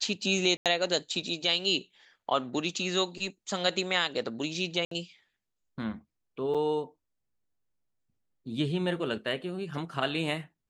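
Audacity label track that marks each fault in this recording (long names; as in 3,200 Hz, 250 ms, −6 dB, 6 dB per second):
0.570000	0.660000	drop-out 87 ms
4.850000	4.910000	drop-out 63 ms
6.540000	6.550000	drop-out 6.3 ms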